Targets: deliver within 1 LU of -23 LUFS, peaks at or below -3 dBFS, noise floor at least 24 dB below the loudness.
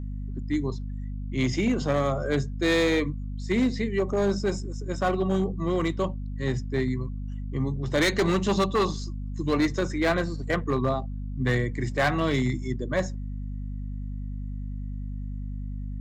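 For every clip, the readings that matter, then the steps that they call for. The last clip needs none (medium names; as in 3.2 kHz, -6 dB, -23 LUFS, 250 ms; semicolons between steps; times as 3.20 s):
clipped samples 1.4%; clipping level -17.5 dBFS; hum 50 Hz; highest harmonic 250 Hz; hum level -31 dBFS; loudness -27.5 LUFS; peak level -17.5 dBFS; loudness target -23.0 LUFS
-> clip repair -17.5 dBFS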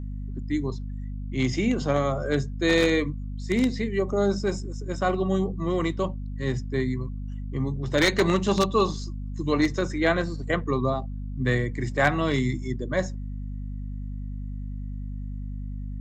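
clipped samples 0.0%; hum 50 Hz; highest harmonic 250 Hz; hum level -30 dBFS
-> de-hum 50 Hz, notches 5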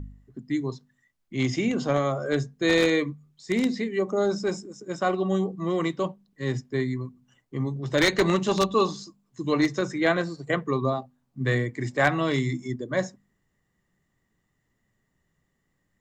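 hum not found; loudness -26.0 LUFS; peak level -7.5 dBFS; loudness target -23.0 LUFS
-> trim +3 dB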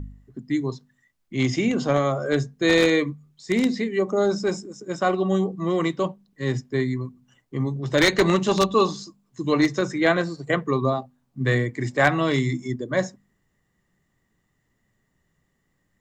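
loudness -23.0 LUFS; peak level -4.5 dBFS; noise floor -72 dBFS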